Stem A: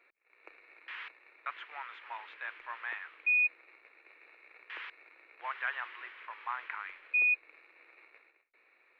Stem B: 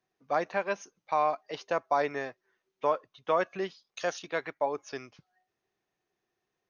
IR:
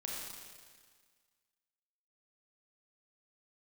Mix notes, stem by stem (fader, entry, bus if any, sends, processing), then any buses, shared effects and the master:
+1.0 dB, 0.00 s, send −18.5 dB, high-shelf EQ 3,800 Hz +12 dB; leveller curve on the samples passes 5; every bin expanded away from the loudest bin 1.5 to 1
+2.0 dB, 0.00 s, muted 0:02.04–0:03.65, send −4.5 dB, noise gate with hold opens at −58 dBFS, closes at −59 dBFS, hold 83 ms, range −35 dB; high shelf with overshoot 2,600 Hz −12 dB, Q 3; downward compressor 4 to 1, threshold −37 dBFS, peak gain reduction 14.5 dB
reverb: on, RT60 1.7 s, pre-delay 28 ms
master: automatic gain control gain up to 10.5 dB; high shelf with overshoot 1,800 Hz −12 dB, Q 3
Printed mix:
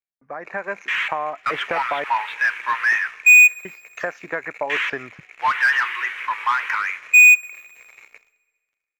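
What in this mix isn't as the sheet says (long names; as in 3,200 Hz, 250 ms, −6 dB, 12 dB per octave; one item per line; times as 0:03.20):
stem B: send off
master: missing high shelf with overshoot 1,800 Hz −12 dB, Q 3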